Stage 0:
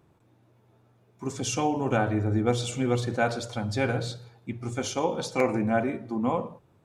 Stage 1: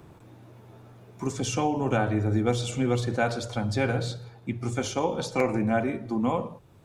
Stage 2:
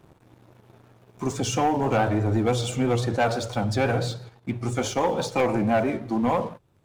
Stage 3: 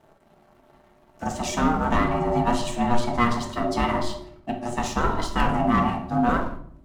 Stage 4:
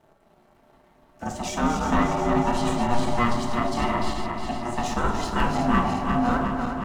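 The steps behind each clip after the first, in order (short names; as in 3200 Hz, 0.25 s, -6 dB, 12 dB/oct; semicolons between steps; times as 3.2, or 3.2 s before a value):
low shelf 60 Hz +7.5 dB; three-band squash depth 40%
dynamic EQ 770 Hz, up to +5 dB, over -38 dBFS, Q 1.1; vibrato 6 Hz 58 cents; sample leveller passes 2; gain -5 dB
added harmonics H 2 -16 dB, 3 -16 dB, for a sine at -13 dBFS; ring modulator 480 Hz; shoebox room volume 850 m³, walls furnished, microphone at 1.6 m; gain +4.5 dB
regenerating reverse delay 0.18 s, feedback 79%, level -6 dB; gain -2.5 dB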